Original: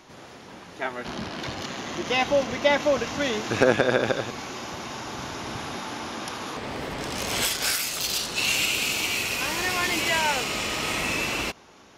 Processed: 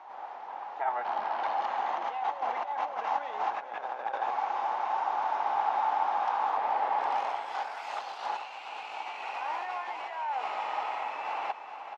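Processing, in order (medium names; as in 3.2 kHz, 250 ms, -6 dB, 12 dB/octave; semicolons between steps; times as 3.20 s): compressor with a negative ratio -31 dBFS, ratio -1; ladder band-pass 880 Hz, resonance 75%; on a send: feedback delay 426 ms, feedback 47%, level -10.5 dB; on the sum: trim +8 dB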